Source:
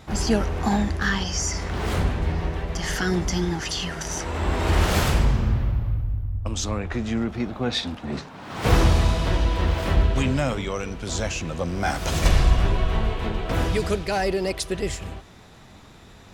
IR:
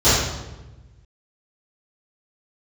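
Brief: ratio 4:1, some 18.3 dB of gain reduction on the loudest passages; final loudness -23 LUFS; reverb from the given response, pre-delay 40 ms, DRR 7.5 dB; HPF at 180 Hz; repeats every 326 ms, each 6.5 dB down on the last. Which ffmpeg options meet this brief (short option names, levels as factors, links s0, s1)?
-filter_complex "[0:a]highpass=180,acompressor=threshold=0.00794:ratio=4,aecho=1:1:326|652|978|1304|1630|1956:0.473|0.222|0.105|0.0491|0.0231|0.0109,asplit=2[s0][s1];[1:a]atrim=start_sample=2205,adelay=40[s2];[s1][s2]afir=irnorm=-1:irlink=0,volume=0.0282[s3];[s0][s3]amix=inputs=2:normalize=0,volume=6.68"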